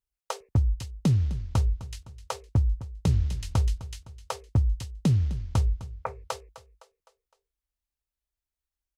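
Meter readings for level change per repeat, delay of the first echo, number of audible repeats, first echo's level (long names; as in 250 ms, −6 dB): −6.5 dB, 256 ms, 3, −16.0 dB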